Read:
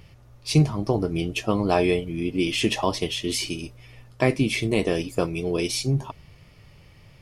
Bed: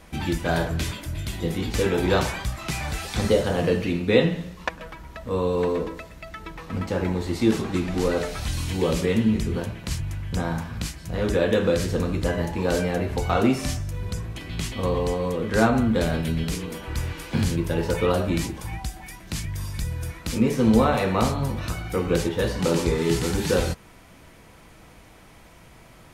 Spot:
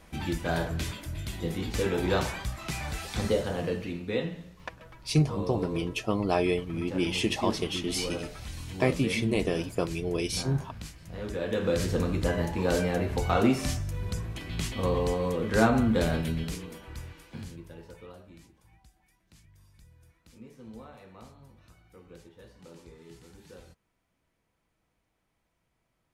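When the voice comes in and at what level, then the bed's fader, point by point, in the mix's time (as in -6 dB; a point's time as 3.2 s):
4.60 s, -5.0 dB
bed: 3.18 s -5.5 dB
4.17 s -12 dB
11.36 s -12 dB
11.84 s -3 dB
16.14 s -3 dB
18.27 s -28 dB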